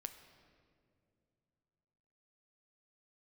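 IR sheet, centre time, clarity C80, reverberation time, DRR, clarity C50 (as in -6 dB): 19 ms, 11.0 dB, 2.6 s, 8.0 dB, 10.0 dB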